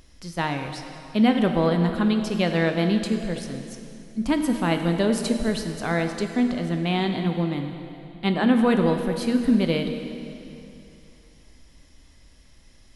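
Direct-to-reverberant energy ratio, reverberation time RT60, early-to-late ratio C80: 5.0 dB, 2.8 s, 7.0 dB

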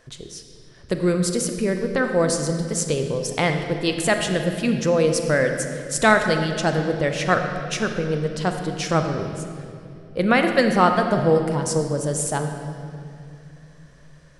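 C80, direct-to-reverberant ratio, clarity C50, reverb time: 7.0 dB, 5.0 dB, 6.0 dB, 2.6 s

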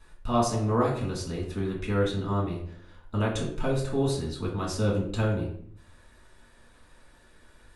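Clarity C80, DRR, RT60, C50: 9.5 dB, −4.5 dB, 0.60 s, 5.5 dB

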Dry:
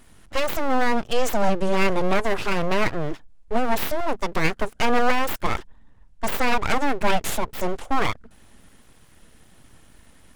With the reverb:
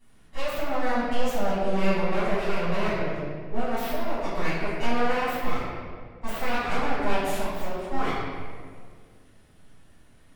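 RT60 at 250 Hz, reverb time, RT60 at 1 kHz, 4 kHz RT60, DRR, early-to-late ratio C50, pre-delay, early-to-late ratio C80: 2.4 s, 1.9 s, 1.7 s, 1.2 s, −15.0 dB, −2.5 dB, 5 ms, 0.0 dB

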